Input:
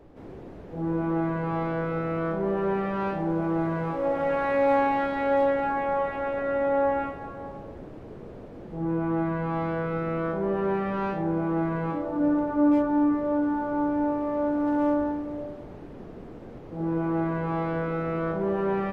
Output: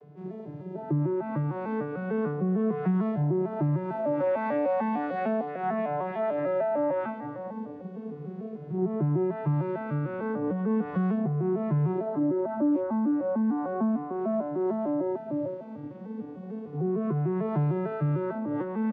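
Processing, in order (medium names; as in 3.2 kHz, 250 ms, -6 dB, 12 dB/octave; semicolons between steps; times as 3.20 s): vocoder on a broken chord major triad, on D3, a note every 150 ms; compression, threshold -29 dBFS, peak gain reduction 10.5 dB; endless flanger 2.4 ms -0.35 Hz; trim +7 dB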